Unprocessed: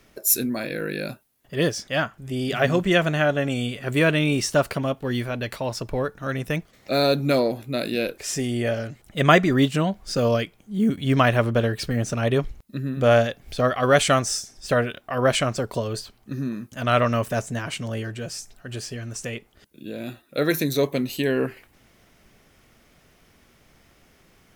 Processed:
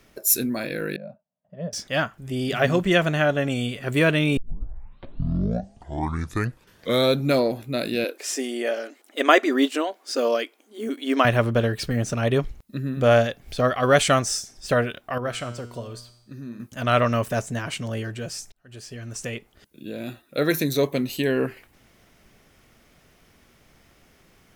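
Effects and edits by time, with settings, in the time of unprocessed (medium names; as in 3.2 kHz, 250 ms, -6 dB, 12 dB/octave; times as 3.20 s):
0.96–1.73 s: two resonant band-passes 340 Hz, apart 1.7 oct
4.37 s: tape start 2.89 s
8.04–11.25 s: brick-wall FIR high-pass 240 Hz
15.18–16.60 s: feedback comb 120 Hz, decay 0.78 s, mix 70%
18.52–19.22 s: fade in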